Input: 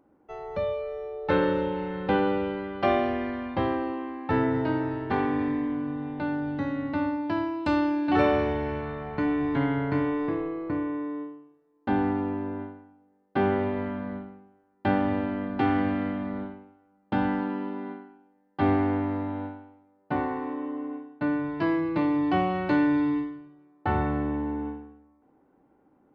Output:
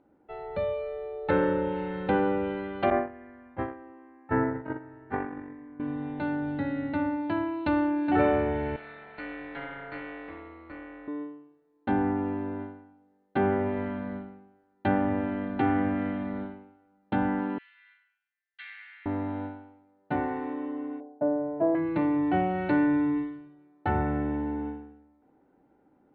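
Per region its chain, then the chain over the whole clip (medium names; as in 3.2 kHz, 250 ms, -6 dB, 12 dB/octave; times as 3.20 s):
2.90–5.80 s: gate -25 dBFS, range -17 dB + resonant high shelf 2.6 kHz -13 dB, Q 1.5
8.76–11.08 s: high-pass 1.3 kHz 6 dB/octave + AM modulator 250 Hz, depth 60% + doubling 13 ms -5 dB
17.58–19.06 s: steep high-pass 1.8 kHz + treble shelf 4.1 kHz -7.5 dB
21.00–21.75 s: resonant low-pass 630 Hz, resonance Q 4.8 + bass shelf 220 Hz -11.5 dB
whole clip: low-pass that closes with the level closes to 2.1 kHz, closed at -22 dBFS; elliptic low-pass 4.2 kHz, stop band 40 dB; band-stop 1.1 kHz, Q 7.4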